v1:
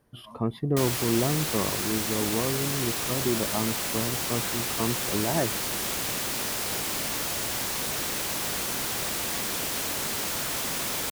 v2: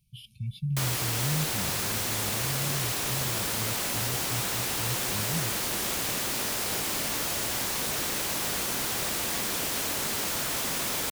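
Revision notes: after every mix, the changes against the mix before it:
speech: add brick-wall FIR band-stop 200–2200 Hz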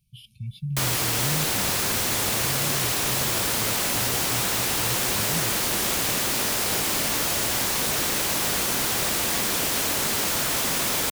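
background +5.5 dB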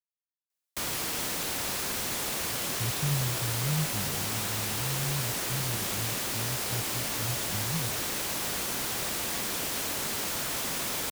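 speech: entry +2.40 s; background -7.5 dB

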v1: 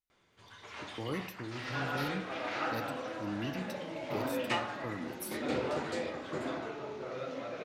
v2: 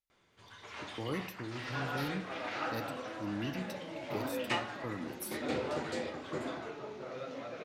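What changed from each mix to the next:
second sound: send -9.5 dB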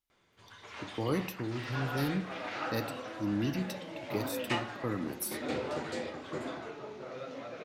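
speech +6.0 dB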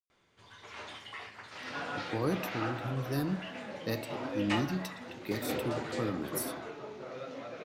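speech: entry +1.15 s

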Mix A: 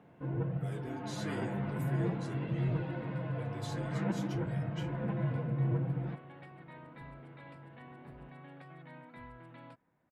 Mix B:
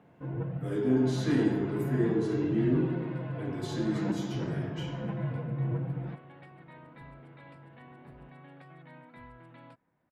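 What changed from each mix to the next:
reverb: on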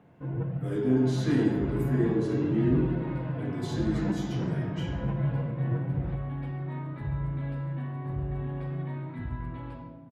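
second sound: send on; master: add bass shelf 130 Hz +7 dB

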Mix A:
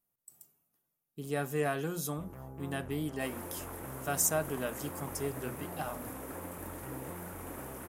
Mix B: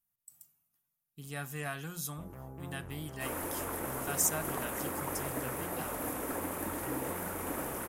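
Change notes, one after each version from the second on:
speech: add peaking EQ 420 Hz -14 dB 1.7 oct; second sound +7.5 dB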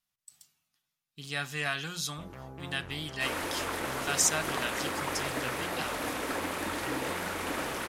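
master: remove FFT filter 120 Hz 0 dB, 970 Hz -4 dB, 2.1 kHz -10 dB, 4.3 kHz -16 dB, 13 kHz +8 dB

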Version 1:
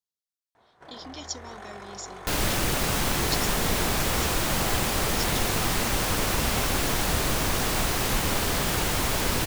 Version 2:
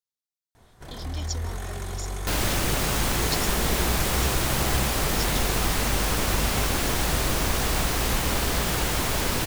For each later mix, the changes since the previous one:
first sound: remove band-pass filter 930 Hz, Q 0.73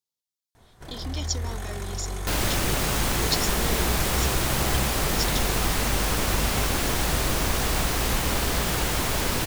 speech +5.0 dB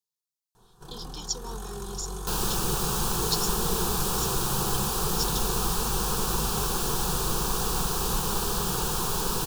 master: add static phaser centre 410 Hz, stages 8

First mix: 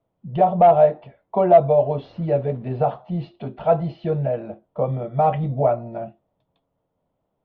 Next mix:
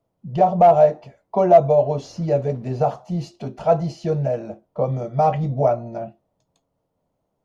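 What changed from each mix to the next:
master: remove elliptic low-pass 3.6 kHz, stop band 70 dB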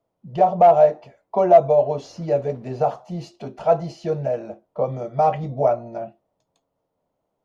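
master: add tone controls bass -7 dB, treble -3 dB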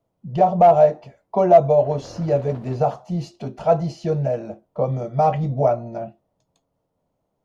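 background +11.0 dB; master: add tone controls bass +7 dB, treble +3 dB

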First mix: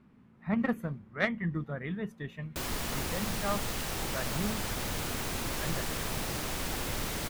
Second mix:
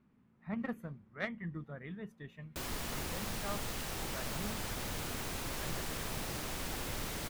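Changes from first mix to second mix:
speech -9.0 dB; background -5.0 dB

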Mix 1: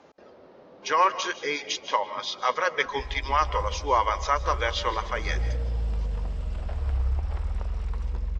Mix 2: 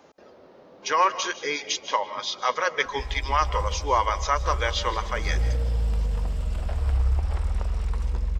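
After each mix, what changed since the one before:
background +3.5 dB; master: remove distance through air 70 m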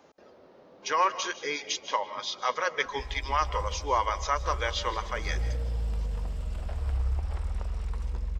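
speech -4.0 dB; background -6.0 dB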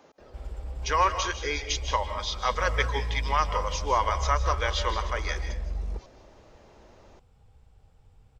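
speech: send +6.0 dB; background: entry -2.65 s

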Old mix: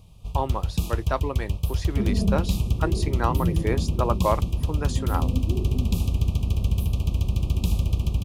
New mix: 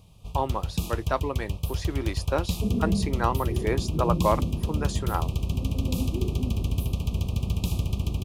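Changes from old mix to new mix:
second sound: entry +0.65 s; master: add bass shelf 79 Hz -8 dB

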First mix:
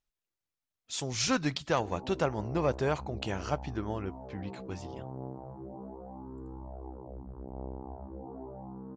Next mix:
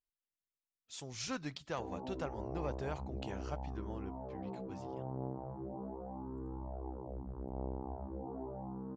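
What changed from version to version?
speech -11.5 dB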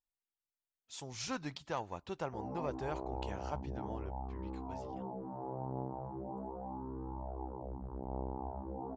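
background: entry +0.55 s; master: add peaking EQ 890 Hz +6 dB 0.52 oct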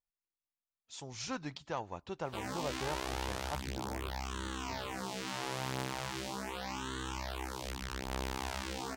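background: remove elliptic low-pass 870 Hz, stop band 80 dB

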